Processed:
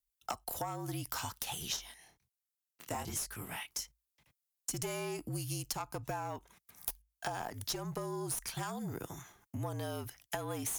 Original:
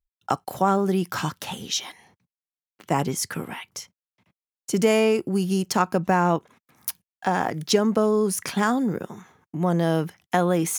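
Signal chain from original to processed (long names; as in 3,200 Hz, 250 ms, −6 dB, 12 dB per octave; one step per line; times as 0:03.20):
first-order pre-emphasis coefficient 0.8
tube saturation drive 23 dB, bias 0.55
frequency shifter −53 Hz
0:01.76–0:03.79: chorus effect 1.3 Hz, delay 18.5 ms, depth 7.8 ms
dynamic equaliser 880 Hz, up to +6 dB, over −54 dBFS, Q 2
downward compressor 12 to 1, threshold −44 dBFS, peak gain reduction 17 dB
level +9 dB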